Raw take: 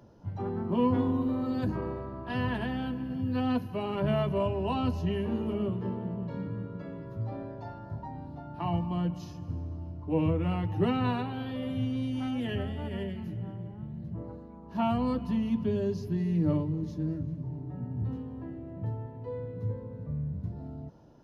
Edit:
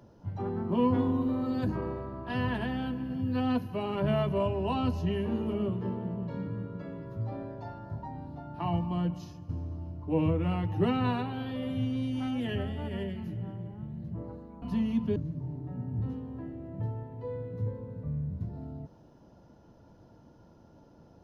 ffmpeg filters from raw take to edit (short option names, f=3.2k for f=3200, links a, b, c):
-filter_complex "[0:a]asplit=4[a][b][c][d];[a]atrim=end=9.49,asetpts=PTS-STARTPTS,afade=t=out:st=9.1:d=0.39:silence=0.473151[e];[b]atrim=start=9.49:end=14.622,asetpts=PTS-STARTPTS,afade=t=in:d=0.004:c=hsin:silence=0.473151[f];[c]atrim=start=15.188:end=15.732[g];[d]atrim=start=17.188[h];[e][f]concat=n=2:v=0:a=1[i];[i][g]acrossfade=d=0.004:c1=hsin:c2=hsin[j];[j][h]acrossfade=d=0.004:c1=hsin:c2=hsin"